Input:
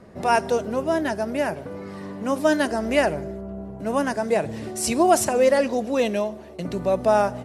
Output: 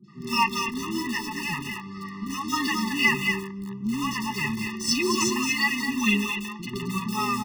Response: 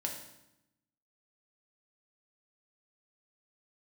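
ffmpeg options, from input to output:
-filter_complex "[0:a]highshelf=f=3100:g=10,aecho=1:1:1.5:0.59,asplit=2[s0][s1];[s1]aecho=0:1:223:0.473[s2];[s0][s2]amix=inputs=2:normalize=0,flanger=delay=5.6:depth=5.9:regen=1:speed=0.71:shape=triangular,highpass=f=160:w=0.5412,highpass=f=160:w=1.3066,equalizer=f=170:t=q:w=4:g=-5,equalizer=f=290:t=q:w=4:g=-6,equalizer=f=860:t=q:w=4:g=-8,equalizer=f=1700:t=q:w=4:g=-8,lowpass=f=4900:w=0.5412,lowpass=f=4900:w=1.3066,asplit=2[s3][s4];[s4]acrusher=bits=4:mix=0:aa=0.000001,volume=0.335[s5];[s3][s5]amix=inputs=2:normalize=0,acrossover=split=430|3300[s6][s7][s8];[s8]adelay=40[s9];[s7]adelay=80[s10];[s6][s10][s9]amix=inputs=3:normalize=0,afftfilt=real='re*eq(mod(floor(b*sr/1024/420),2),0)':imag='im*eq(mod(floor(b*sr/1024/420),2),0)':win_size=1024:overlap=0.75,volume=2.11"

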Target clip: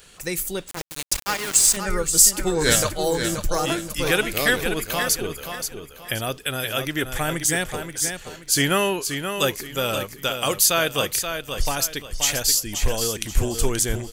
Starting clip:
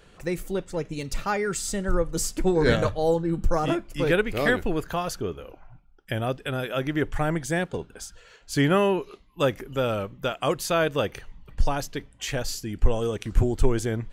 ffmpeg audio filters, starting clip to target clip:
-filter_complex "[0:a]aecho=1:1:529|1058|1587|2116:0.422|0.135|0.0432|0.0138,crystalizer=i=7.5:c=0,asettb=1/sr,asplit=3[s0][s1][s2];[s0]atrim=end=0.684[s3];[s1]atrim=start=0.68:end=1.77,asetpts=PTS-STARTPTS,afade=t=in:d=0.004:c=qsin,afade=t=out:st=1.086:d=0.004:c=qsin,aeval=exprs='val(0)*gte(abs(val(0)),0.1)':c=same[s4];[s2]atrim=start=1.766[s5];[s3][s4]acrossfade=d=0.004:c1=hsin:c2=qsin[s6];[s6][s5]acrossfade=d=0.004:c1=qsin:c2=hsin,volume=0.75"

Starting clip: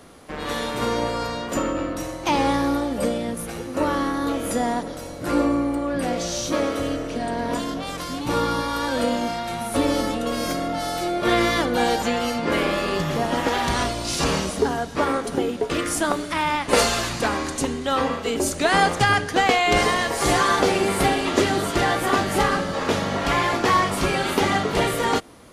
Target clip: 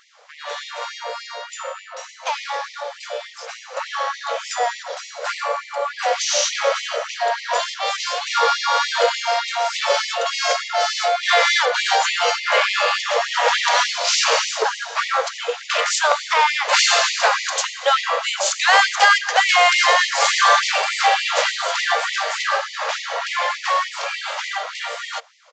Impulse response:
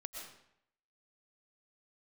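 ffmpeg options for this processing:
-filter_complex "[0:a]asplit=2[s0][s1];[s1]asetrate=22050,aresample=44100,atempo=2,volume=0.355[s2];[s0][s2]amix=inputs=2:normalize=0,aresample=16000,asoftclip=type=tanh:threshold=0.178,aresample=44100,dynaudnorm=f=780:g=11:m=3.55,afftfilt=real='re*gte(b*sr/1024,430*pow(1900/430,0.5+0.5*sin(2*PI*3.4*pts/sr)))':imag='im*gte(b*sr/1024,430*pow(1900/430,0.5+0.5*sin(2*PI*3.4*pts/sr)))':win_size=1024:overlap=0.75"

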